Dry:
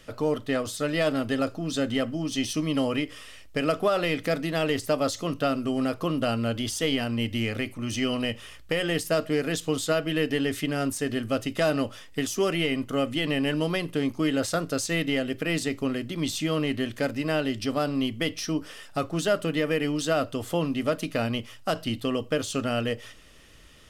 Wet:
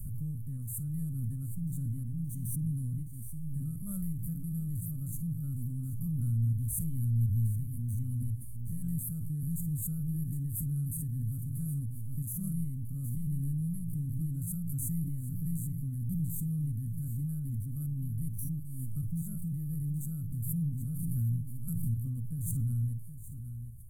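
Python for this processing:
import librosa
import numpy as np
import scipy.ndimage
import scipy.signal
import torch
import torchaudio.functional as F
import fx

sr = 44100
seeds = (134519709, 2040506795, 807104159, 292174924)

p1 = fx.spec_steps(x, sr, hold_ms=50)
p2 = scipy.signal.sosfilt(scipy.signal.cheby2(4, 50, [350.0, 5400.0], 'bandstop', fs=sr, output='sos'), p1)
p3 = p2 + fx.echo_single(p2, sr, ms=768, db=-10.5, dry=0)
p4 = fx.pre_swell(p3, sr, db_per_s=21.0)
y = F.gain(torch.from_numpy(p4), 5.5).numpy()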